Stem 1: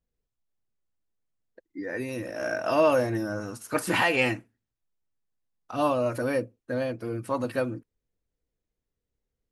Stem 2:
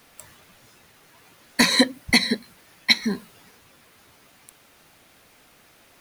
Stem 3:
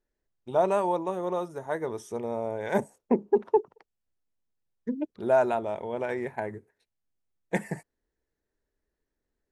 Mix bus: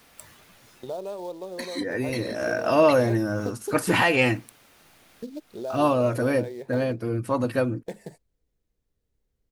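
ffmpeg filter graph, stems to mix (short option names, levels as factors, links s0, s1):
-filter_complex "[0:a]lowshelf=f=230:g=6,volume=1.33[s0];[1:a]acompressor=threshold=0.0562:ratio=2.5,volume=0.891[s1];[2:a]acrusher=bits=5:mode=log:mix=0:aa=0.000001,agate=range=0.282:threshold=0.00562:ratio=16:detection=peak,equalizer=f=500:t=o:w=1:g=8,equalizer=f=1000:t=o:w=1:g=-5,equalizer=f=2000:t=o:w=1:g=-7,equalizer=f=4000:t=o:w=1:g=10,adelay=350,volume=0.891[s2];[s1][s2]amix=inputs=2:normalize=0,acompressor=threshold=0.0141:ratio=2.5,volume=1[s3];[s0][s3]amix=inputs=2:normalize=0"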